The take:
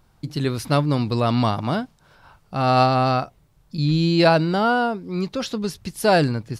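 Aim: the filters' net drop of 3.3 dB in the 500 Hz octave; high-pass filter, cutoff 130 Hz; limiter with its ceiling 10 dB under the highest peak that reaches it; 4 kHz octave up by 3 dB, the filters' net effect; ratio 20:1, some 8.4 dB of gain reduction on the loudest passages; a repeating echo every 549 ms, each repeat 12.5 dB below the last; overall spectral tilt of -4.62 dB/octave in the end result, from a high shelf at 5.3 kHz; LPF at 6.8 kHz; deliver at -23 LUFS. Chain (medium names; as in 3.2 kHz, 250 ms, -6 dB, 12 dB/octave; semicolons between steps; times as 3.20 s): high-pass 130 Hz; low-pass 6.8 kHz; peaking EQ 500 Hz -4.5 dB; peaking EQ 4 kHz +5.5 dB; treble shelf 5.3 kHz -4 dB; compression 20:1, threshold -21 dBFS; peak limiter -21.5 dBFS; feedback delay 549 ms, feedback 24%, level -12.5 dB; trim +8.5 dB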